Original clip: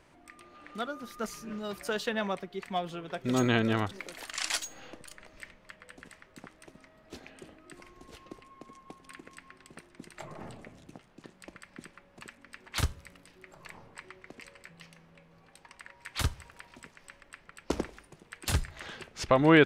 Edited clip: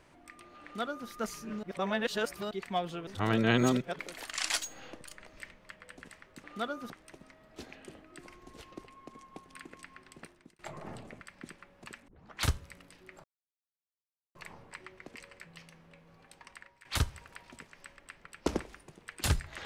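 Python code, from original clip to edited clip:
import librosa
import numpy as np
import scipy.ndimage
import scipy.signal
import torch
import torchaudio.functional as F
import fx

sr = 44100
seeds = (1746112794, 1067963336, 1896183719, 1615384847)

y = fx.edit(x, sr, fx.duplicate(start_s=0.63, length_s=0.46, to_s=6.44),
    fx.reverse_span(start_s=1.63, length_s=0.88),
    fx.reverse_span(start_s=3.07, length_s=0.92),
    fx.fade_out_span(start_s=9.77, length_s=0.36),
    fx.cut(start_s=10.75, length_s=0.81),
    fx.tape_start(start_s=12.43, length_s=0.33),
    fx.insert_silence(at_s=13.59, length_s=1.11),
    fx.fade_out_to(start_s=15.75, length_s=0.34, floor_db=-16.5), tone=tone)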